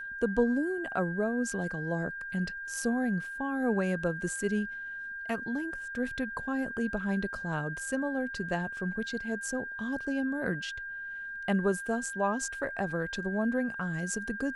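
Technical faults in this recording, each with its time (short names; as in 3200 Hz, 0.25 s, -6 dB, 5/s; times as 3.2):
tone 1600 Hz -37 dBFS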